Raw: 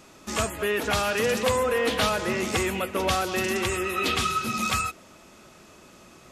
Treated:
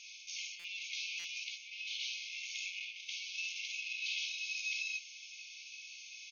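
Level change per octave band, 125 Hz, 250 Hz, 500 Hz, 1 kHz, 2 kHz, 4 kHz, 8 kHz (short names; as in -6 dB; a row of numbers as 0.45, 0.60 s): under -40 dB, under -40 dB, under -40 dB, under -40 dB, -11.0 dB, -8.5 dB, -12.5 dB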